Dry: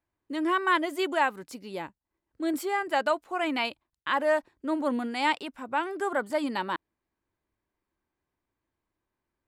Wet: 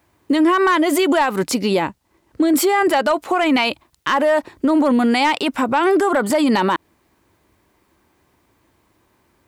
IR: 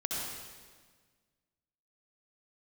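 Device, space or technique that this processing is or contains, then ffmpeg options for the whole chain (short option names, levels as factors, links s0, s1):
mastering chain: -filter_complex "[0:a]highpass=57,equalizer=f=1600:t=o:w=0.22:g=-3,acompressor=threshold=0.0355:ratio=2.5,asoftclip=type=tanh:threshold=0.106,asoftclip=type=hard:threshold=0.0631,alimiter=level_in=44.7:limit=0.891:release=50:level=0:latency=1,asettb=1/sr,asplit=3[s0][s1][s2];[s0]atrim=end=1.464[s3];[s1]atrim=start=1.46:end=2.54,asetpts=PTS-STARTPTS,afade=t=in:d=0.004:c=qsin,afade=t=out:st=1.076:d=0.004:c=qsin,highshelf=f=11000:g=-5.5[s4];[s2]atrim=start=2.536[s5];[s3][s4]acrossfade=d=0.004:c1=hsin:c2=qsin[s6];[s6][s5]acrossfade=d=0.004:c1=qsin:c2=hsin,volume=0.376"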